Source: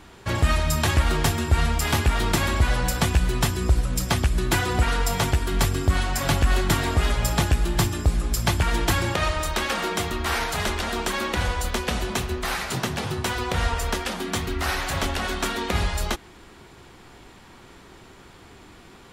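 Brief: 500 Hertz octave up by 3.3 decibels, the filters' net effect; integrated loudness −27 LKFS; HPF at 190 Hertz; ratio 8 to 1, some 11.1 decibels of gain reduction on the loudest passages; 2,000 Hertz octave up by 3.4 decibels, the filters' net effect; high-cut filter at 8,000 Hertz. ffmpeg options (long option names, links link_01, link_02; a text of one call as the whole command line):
ffmpeg -i in.wav -af "highpass=190,lowpass=8000,equalizer=frequency=500:width_type=o:gain=4.5,equalizer=frequency=2000:width_type=o:gain=4,acompressor=threshold=-30dB:ratio=8,volume=6dB" out.wav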